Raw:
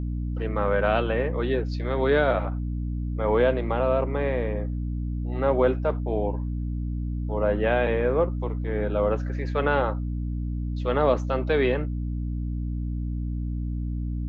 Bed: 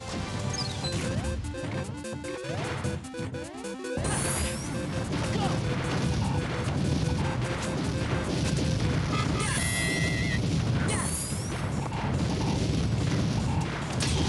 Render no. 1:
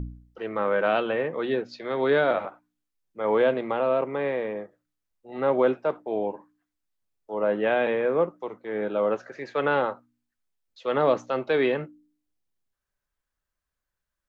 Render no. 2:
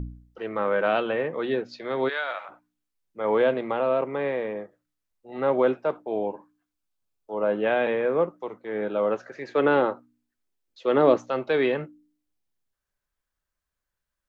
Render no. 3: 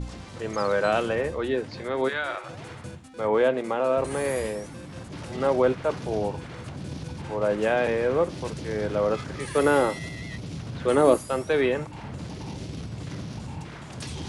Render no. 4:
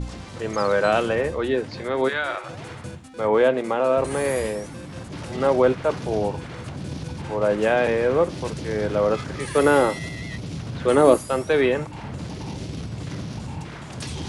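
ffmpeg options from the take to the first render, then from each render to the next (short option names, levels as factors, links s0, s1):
-af "bandreject=f=60:t=h:w=4,bandreject=f=120:t=h:w=4,bandreject=f=180:t=h:w=4,bandreject=f=240:t=h:w=4,bandreject=f=300:t=h:w=4"
-filter_complex "[0:a]asplit=3[s0][s1][s2];[s0]afade=t=out:st=2.08:d=0.02[s3];[s1]highpass=1200,afade=t=in:st=2.08:d=0.02,afade=t=out:st=2.48:d=0.02[s4];[s2]afade=t=in:st=2.48:d=0.02[s5];[s3][s4][s5]amix=inputs=3:normalize=0,asettb=1/sr,asplit=3[s6][s7][s8];[s6]atrim=end=5.924[s9];[s7]atrim=start=5.92:end=7.66,asetpts=PTS-STARTPTS,afade=t=in:d=0.004:c=qsin,afade=t=out:st=1.736:d=0.004:c=qsin,bandreject=f=1900:w=7.4[s10];[s8]atrim=start=7.656[s11];[s9][s10]acrossfade=d=0.004:c1=hsin:c2=qsin[s12];[s12][s11]acrossfade=d=0.004:c1=qsin:c2=hsin,asettb=1/sr,asplit=3[s13][s14][s15];[s13]atrim=end=9.494[s16];[s14]atrim=start=9.49:end=11.16,asetpts=PTS-STARTPTS,afade=t=in:d=0.004:c=qsin,afade=t=out:st=1.666:d=0.004:c=qsin,equalizer=f=330:w=1.5:g=9[s17];[s15]atrim=start=11.156[s18];[s16][s17]acrossfade=d=0.004:c1=hsin:c2=qsin[s19];[s19][s18]acrossfade=d=0.004:c1=qsin:c2=hsin"
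-filter_complex "[1:a]volume=0.376[s0];[0:a][s0]amix=inputs=2:normalize=0"
-af "volume=1.5"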